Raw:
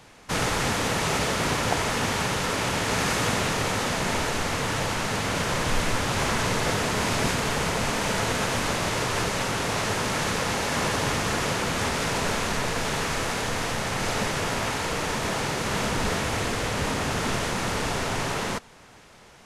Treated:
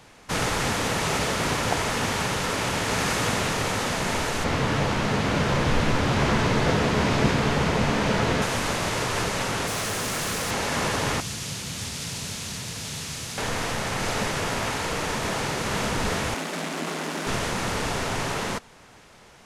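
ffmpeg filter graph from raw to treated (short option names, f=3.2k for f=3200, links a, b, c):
-filter_complex "[0:a]asettb=1/sr,asplit=3[a][b][c];[a]atrim=end=4.444[d];[b]atrim=start=4.44:end=8.42,asetpts=PTS-STARTPTS,afade=t=in:d=0.004:c=qsin,afade=t=out:st=3.976:d=0.004:c=qsin,asplit=2[e][f];[f]adelay=14,volume=-10.5dB[g];[e][g]amix=inputs=2:normalize=0,atrim=end_sample=175518,acrossover=split=5600[h][i];[i]acompressor=threshold=-47dB:ratio=4:attack=1:release=60[j];[h][j]amix=inputs=2:normalize=0,equalizer=f=170:w=0.36:g=6[k];[c]atrim=start=8.416[l];[d][k]acrossfade=d=0.004:c1=hsin:c2=qsin[m];[m][l]acrossfade=d=0.004:c1=qsin:c2=hsin,asettb=1/sr,asplit=3[n][o][p];[n]atrim=end=9.674[q];[o]atrim=start=9.67:end=10.51,asetpts=PTS-STARTPTS,afade=t=in:d=0.004:c=qsin,afade=t=out:st=0.836:d=0.004:c=qsin,highshelf=f=7.2k:g=10,bandreject=f=900:w=13,volume=25dB,asoftclip=hard,volume=-25dB[r];[p]atrim=start=10.506[s];[q][r]acrossfade=d=0.004:c1=hsin:c2=qsin[t];[t][s]acrossfade=d=0.004:c1=qsin:c2=hsin,asettb=1/sr,asplit=3[u][v][w];[u]atrim=end=11.204[x];[v]atrim=start=11.2:end=13.38,asetpts=PTS-STARTPTS,afade=t=in:d=0.004:c=qsin,afade=t=out:st=2.176:d=0.004:c=qsin,acrossover=split=180|3000[y][z][aa];[z]acompressor=threshold=-41dB:ratio=10:attack=3.2:release=140:knee=2.83:detection=peak[ab];[y][ab][aa]amix=inputs=3:normalize=0,highpass=91[ac];[w]atrim=start=13.376[ad];[x][ac]acrossfade=d=0.004:c1=hsin:c2=qsin[ae];[ae][ad]acrossfade=d=0.004:c1=qsin:c2=hsin,asettb=1/sr,asplit=3[af][ag][ah];[af]atrim=end=16.344[ai];[ag]atrim=start=16.34:end=17.27,asetpts=PTS-STARTPTS,afade=t=in:d=0.004:c=qsin,afade=t=out:st=0.926:d=0.004:c=qsin,aeval=exprs='(tanh(11.2*val(0)+0.7)-tanh(0.7))/11.2':c=same,afreqshift=160[aj];[ah]atrim=start=17.266[ak];[ai][aj]acrossfade=d=0.004:c1=hsin:c2=qsin[al];[al][ak]acrossfade=d=0.004:c1=qsin:c2=hsin"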